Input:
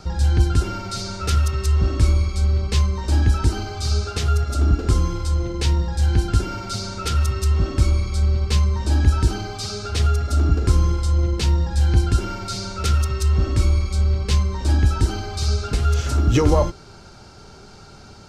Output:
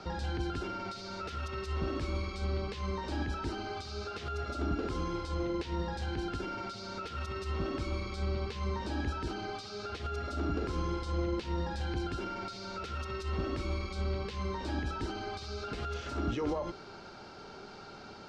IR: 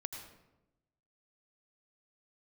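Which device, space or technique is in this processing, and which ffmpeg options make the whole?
de-esser from a sidechain: -filter_complex "[0:a]acrossover=split=200 4800:gain=0.2 1 0.0891[a][b][c];[a][b][c]amix=inputs=3:normalize=0,asplit=2[d][e];[e]highpass=f=4.2k:p=1,apad=whole_len=806401[f];[d][f]sidechaincompress=threshold=-43dB:ratio=12:attack=0.83:release=93,volume=-1.5dB"

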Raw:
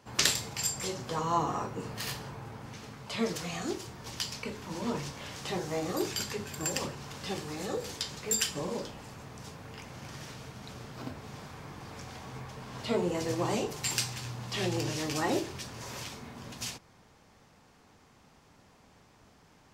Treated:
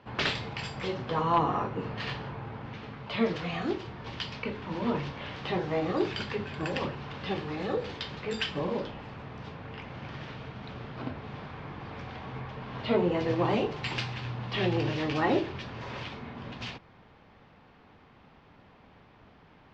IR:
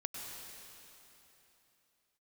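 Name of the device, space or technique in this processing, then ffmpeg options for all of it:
synthesiser wavefolder: -af "aeval=exprs='0.106*(abs(mod(val(0)/0.106+3,4)-2)-1)':c=same,lowpass=f=3.5k:w=0.5412,lowpass=f=3.5k:w=1.3066,volume=4dB"

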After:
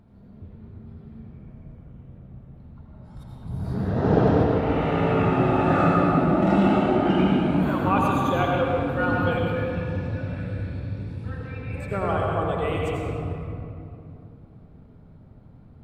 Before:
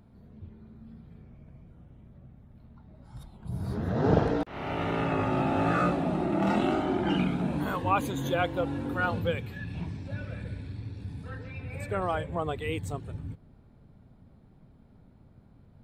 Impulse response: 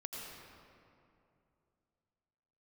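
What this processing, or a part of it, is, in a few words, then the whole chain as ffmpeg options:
swimming-pool hall: -filter_complex "[1:a]atrim=start_sample=2205[a];[0:a][a]afir=irnorm=-1:irlink=0,highshelf=f=4.1k:g=-7,volume=7dB"

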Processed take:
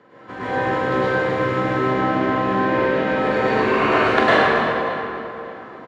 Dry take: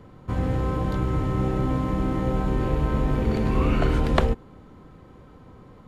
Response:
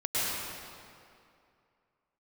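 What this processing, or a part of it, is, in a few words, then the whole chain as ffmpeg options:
station announcement: -filter_complex "[0:a]asettb=1/sr,asplit=3[a][b][c];[a]atrim=end=1.754[d];[b]atrim=start=1.75:end=3.07,asetpts=PTS-STARTPTS,afade=t=in:d=0.004:c=qsin,afade=t=out:st=1.316:d=0.004:c=qsin,lowpass=5.9k[e];[c]atrim=start=3.066[f];[d][e]acrossfade=d=0.004:c1=hsin:c2=qsin[g];[g][f]acrossfade=d=0.004:c1=qsin:c2=hsin,highpass=350,lowpass=4.9k,equalizer=f=1.7k:t=o:w=0.32:g=9,aecho=1:1:43.73|277:0.355|0.251[h];[1:a]atrim=start_sample=2205[i];[h][i]afir=irnorm=-1:irlink=0,asplit=2[j][k];[k]adelay=582,lowpass=f=2.3k:p=1,volume=-14dB,asplit=2[l][m];[m]adelay=582,lowpass=f=2.3k:p=1,volume=0.31,asplit=2[n][o];[o]adelay=582,lowpass=f=2.3k:p=1,volume=0.31[p];[j][l][n][p]amix=inputs=4:normalize=0,volume=1dB"

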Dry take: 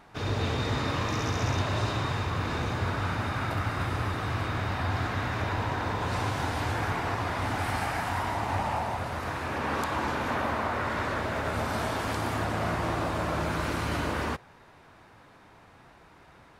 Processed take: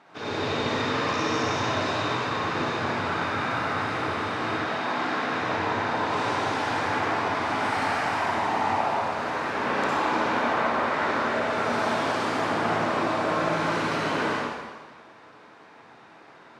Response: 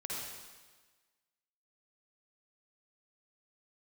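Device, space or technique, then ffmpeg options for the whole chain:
supermarket ceiling speaker: -filter_complex "[0:a]asettb=1/sr,asplit=3[a][b][c];[a]atrim=end=4.504[d];[b]atrim=start=4.5:end=5.33,asetpts=PTS-STARTPTS,afade=t=in:d=0.004:c=qsin,afade=t=out:st=0.826:d=0.004:c=qsin,highpass=f=160:w=0.5412,highpass=f=160:w=1.3066[e];[c]atrim=start=5.326[f];[d][e]acrossfade=d=0.004:c1=hsin:c2=qsin[g];[g][f]acrossfade=d=0.004:c1=qsin:c2=hsin,highpass=230,lowpass=6.2k[h];[1:a]atrim=start_sample=2205[i];[h][i]afir=irnorm=-1:irlink=0,volume=4dB"

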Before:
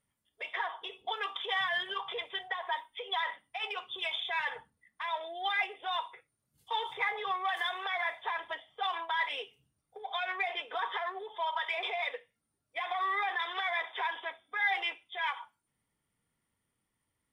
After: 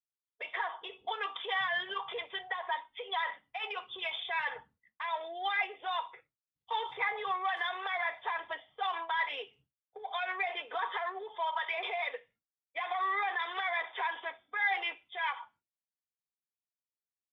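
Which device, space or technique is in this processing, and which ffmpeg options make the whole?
hearing-loss simulation: -af "lowpass=3.3k,agate=range=-33dB:threshold=-59dB:ratio=3:detection=peak"

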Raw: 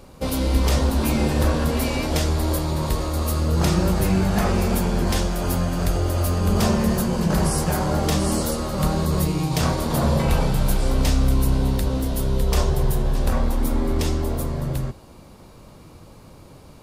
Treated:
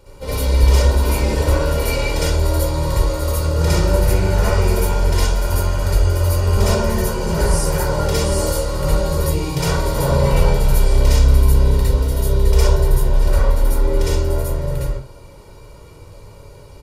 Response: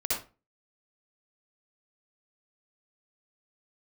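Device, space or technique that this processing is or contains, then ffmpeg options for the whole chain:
microphone above a desk: -filter_complex "[0:a]aecho=1:1:2.1:0.61[a];[1:a]atrim=start_sample=2205[b];[a][b]afir=irnorm=-1:irlink=0,volume=-5dB"

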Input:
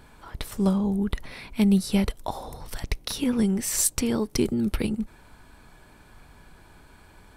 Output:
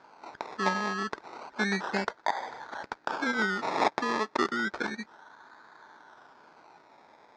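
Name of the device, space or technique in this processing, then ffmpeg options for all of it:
circuit-bent sampling toy: -af "acrusher=samples=23:mix=1:aa=0.000001:lfo=1:lforange=13.8:lforate=0.31,highpass=430,equalizer=f=520:t=q:w=4:g=-3,equalizer=f=900:t=q:w=4:g=7,equalizer=f=1.5k:t=q:w=4:g=9,equalizer=f=2.9k:t=q:w=4:g=-9,lowpass=f=5.4k:w=0.5412,lowpass=f=5.4k:w=1.3066"

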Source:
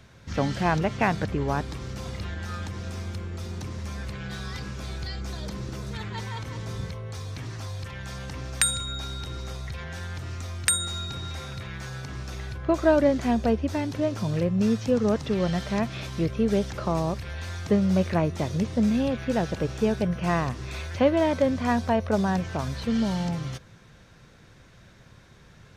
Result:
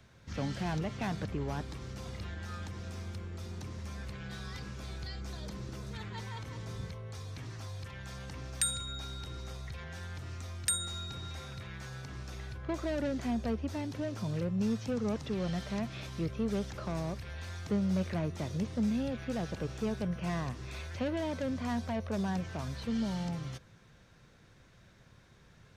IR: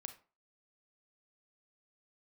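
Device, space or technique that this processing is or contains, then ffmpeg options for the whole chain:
one-band saturation: -filter_complex "[0:a]acrossover=split=270|3000[a][b][c];[b]asoftclip=type=tanh:threshold=-26.5dB[d];[a][d][c]amix=inputs=3:normalize=0,volume=-7.5dB"

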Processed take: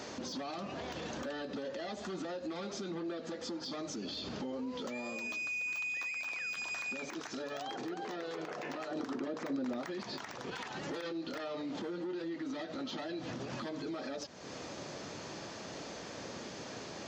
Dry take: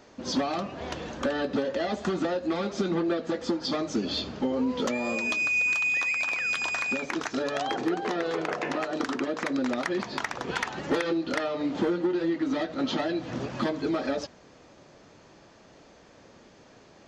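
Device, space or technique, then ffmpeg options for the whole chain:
broadcast voice chain: -filter_complex "[0:a]highpass=86,deesser=0.85,acompressor=threshold=-45dB:ratio=4,equalizer=f=5.5k:t=o:w=1.5:g=5,alimiter=level_in=17dB:limit=-24dB:level=0:latency=1:release=53,volume=-17dB,asettb=1/sr,asplit=3[a][b][c];[a]atrim=end=8.914[d];[b]atrim=start=8.91:end=9.86,asetpts=PTS-STARTPTS,afade=t=in:d=0.004:c=qsin,afade=t=out:st=0.946:d=0.004:c=qsin,tiltshelf=f=1.3k:g=4.5[e];[c]atrim=start=9.856[f];[d][e]acrossfade=d=0.004:c1=hsin:c2=qsin[g];[g][f]acrossfade=d=0.004:c1=qsin:c2=hsin,volume=8.5dB"

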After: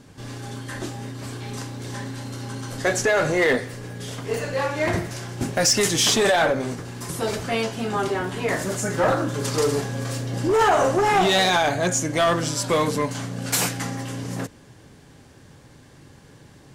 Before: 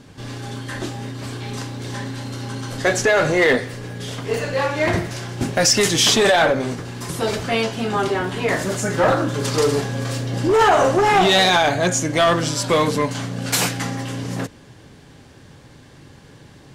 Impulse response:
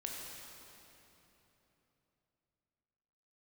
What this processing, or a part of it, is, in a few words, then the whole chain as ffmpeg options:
exciter from parts: -filter_complex "[0:a]asplit=2[a][b];[b]highpass=f=3.4k:p=1,asoftclip=type=tanh:threshold=-14dB,highpass=3.9k,volume=-4.5dB[c];[a][c]amix=inputs=2:normalize=0,volume=-3.5dB"

